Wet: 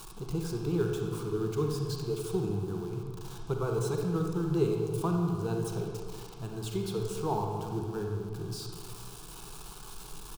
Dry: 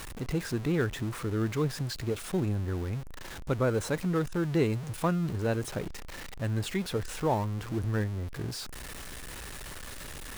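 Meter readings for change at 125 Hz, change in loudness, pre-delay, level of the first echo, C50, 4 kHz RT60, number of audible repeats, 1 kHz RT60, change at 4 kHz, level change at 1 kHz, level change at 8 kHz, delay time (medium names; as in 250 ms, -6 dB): -2.0 dB, -1.0 dB, 36 ms, -20.0 dB, 2.0 dB, 1.2 s, 1, 1.7 s, -4.0 dB, -1.5 dB, -2.5 dB, 416 ms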